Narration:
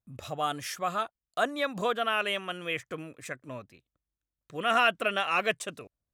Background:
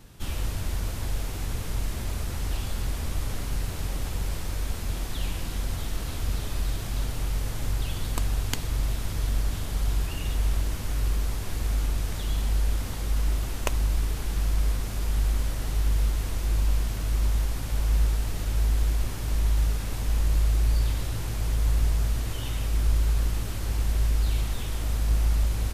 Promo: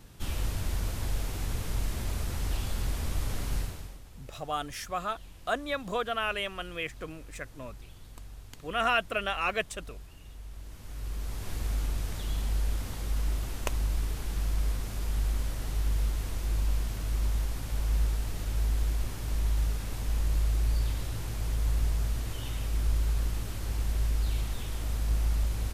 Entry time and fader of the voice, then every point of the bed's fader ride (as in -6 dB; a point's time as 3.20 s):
4.10 s, -2.5 dB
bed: 3.59 s -2 dB
4.03 s -19.5 dB
10.49 s -19.5 dB
11.49 s -4.5 dB